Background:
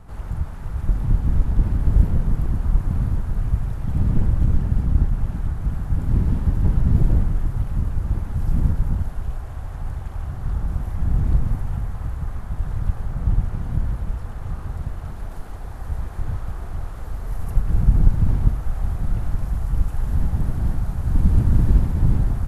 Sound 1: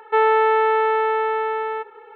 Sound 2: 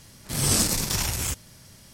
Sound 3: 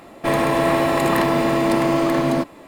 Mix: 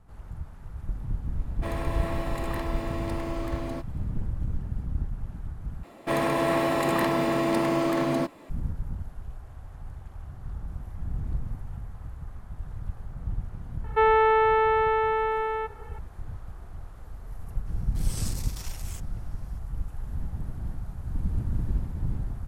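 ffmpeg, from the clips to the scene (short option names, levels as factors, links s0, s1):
-filter_complex "[3:a]asplit=2[s0][s1];[0:a]volume=0.251,asplit=2[s2][s3];[s2]atrim=end=5.834[s4];[s1]atrim=end=2.67,asetpts=PTS-STARTPTS,volume=0.473[s5];[s3]atrim=start=8.496[s6];[s0]atrim=end=2.67,asetpts=PTS-STARTPTS,volume=0.168,afade=t=in:d=0.004:c=hsin,afade=t=out:st=2.666:d=0.004:c=hsin,adelay=1380[s7];[1:a]atrim=end=2.15,asetpts=PTS-STARTPTS,volume=0.668,afade=t=in:d=0.004:c=hsin,afade=t=out:st=2.146:d=0.004:c=hsin,adelay=13840[s8];[2:a]atrim=end=1.93,asetpts=PTS-STARTPTS,volume=0.158,afade=t=in:d=0.004:c=hsin,afade=t=out:st=1.926:d=0.004:c=hsin,adelay=17660[s9];[s4][s5]acrossfade=d=0.004:c1=hsin:c2=hsin[s10];[s10][s6]acrossfade=d=0.004:c1=hsin:c2=hsin[s11];[s11][s7][s8][s9]amix=inputs=4:normalize=0"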